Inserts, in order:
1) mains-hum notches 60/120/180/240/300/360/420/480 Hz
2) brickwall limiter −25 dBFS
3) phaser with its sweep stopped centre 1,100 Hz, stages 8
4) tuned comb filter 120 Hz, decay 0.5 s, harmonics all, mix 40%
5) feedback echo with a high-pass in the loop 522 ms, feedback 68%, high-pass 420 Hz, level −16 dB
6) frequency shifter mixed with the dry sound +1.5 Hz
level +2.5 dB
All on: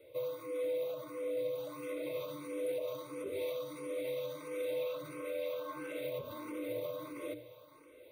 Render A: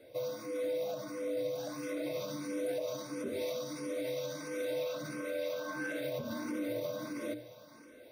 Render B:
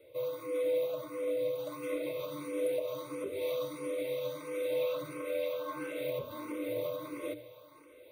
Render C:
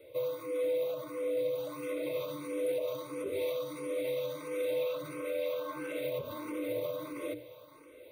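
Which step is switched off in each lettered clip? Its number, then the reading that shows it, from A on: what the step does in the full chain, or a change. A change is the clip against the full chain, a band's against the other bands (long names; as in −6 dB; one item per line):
3, 500 Hz band −5.0 dB
2, average gain reduction 3.0 dB
4, change in integrated loudness +4.0 LU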